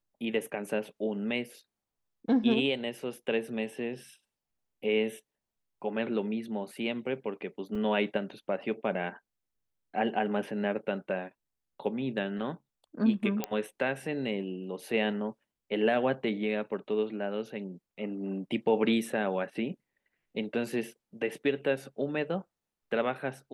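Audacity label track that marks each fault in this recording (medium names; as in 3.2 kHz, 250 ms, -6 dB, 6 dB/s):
7.750000	7.750000	dropout 3.3 ms
13.440000	13.440000	pop -15 dBFS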